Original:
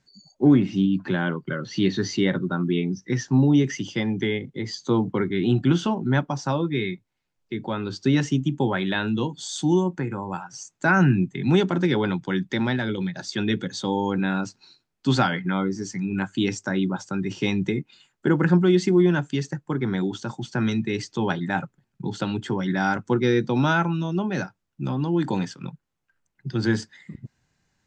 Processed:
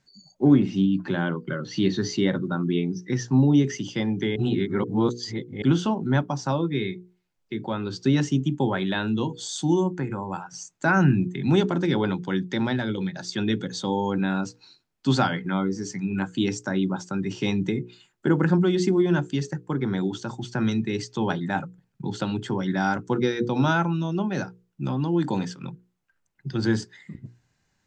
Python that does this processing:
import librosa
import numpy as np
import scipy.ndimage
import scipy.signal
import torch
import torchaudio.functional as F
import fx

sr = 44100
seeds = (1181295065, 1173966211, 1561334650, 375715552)

y = fx.edit(x, sr, fx.reverse_span(start_s=4.36, length_s=1.26), tone=tone)
y = fx.hum_notches(y, sr, base_hz=60, count=8)
y = fx.dynamic_eq(y, sr, hz=2100.0, q=1.2, threshold_db=-40.0, ratio=4.0, max_db=-4)